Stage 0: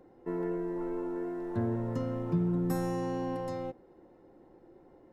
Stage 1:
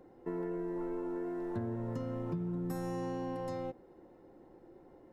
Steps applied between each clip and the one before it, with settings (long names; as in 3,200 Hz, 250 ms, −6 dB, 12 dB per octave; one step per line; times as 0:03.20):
downward compressor 5 to 1, threshold −34 dBFS, peak gain reduction 9.5 dB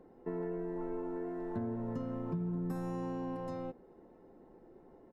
high-shelf EQ 2,600 Hz −9 dB
comb filter 4.6 ms, depth 34%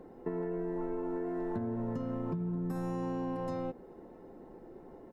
downward compressor, threshold −39 dBFS, peak gain reduction 7.5 dB
level +7 dB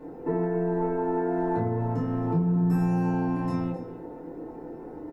double-tracking delay 24 ms −4 dB
single-tap delay 263 ms −14.5 dB
feedback delay network reverb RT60 0.43 s, low-frequency decay 1.1×, high-frequency decay 0.45×, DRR −6.5 dB